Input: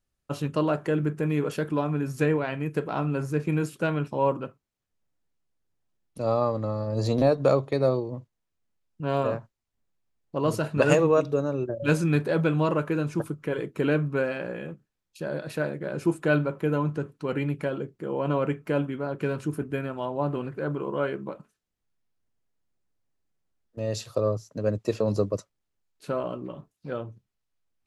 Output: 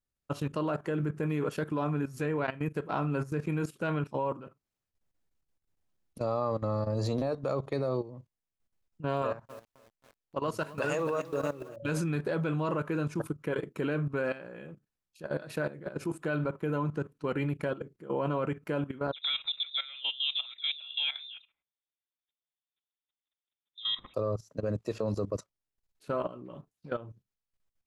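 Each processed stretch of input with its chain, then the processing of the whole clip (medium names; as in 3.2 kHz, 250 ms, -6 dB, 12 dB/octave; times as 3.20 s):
9.22–11.76 s: bass shelf 430 Hz -7 dB + bit-crushed delay 267 ms, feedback 55%, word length 7-bit, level -12.5 dB
19.12–24.14 s: high-pass 160 Hz + phase dispersion highs, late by 43 ms, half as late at 440 Hz + frequency inversion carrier 3.8 kHz
whole clip: dynamic bell 1.2 kHz, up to +3 dB, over -43 dBFS, Q 1.6; level held to a coarse grid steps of 15 dB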